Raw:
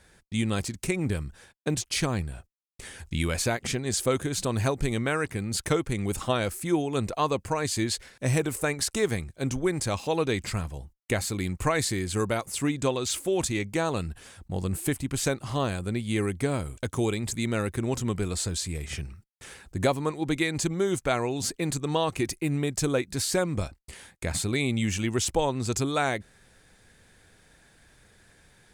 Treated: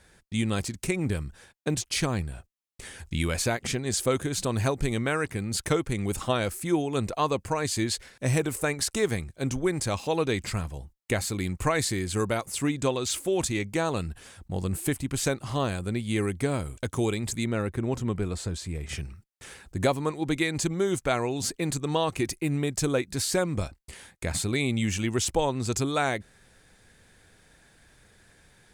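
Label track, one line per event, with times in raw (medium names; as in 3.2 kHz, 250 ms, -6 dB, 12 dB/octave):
17.440000	18.890000	treble shelf 2.9 kHz -10 dB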